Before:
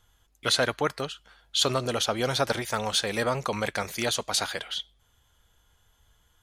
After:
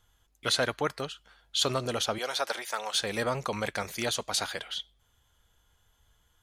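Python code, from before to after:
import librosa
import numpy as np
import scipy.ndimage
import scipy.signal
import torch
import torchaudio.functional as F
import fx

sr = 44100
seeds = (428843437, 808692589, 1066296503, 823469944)

y = fx.highpass(x, sr, hz=580.0, slope=12, at=(2.18, 2.95))
y = y * librosa.db_to_amplitude(-3.0)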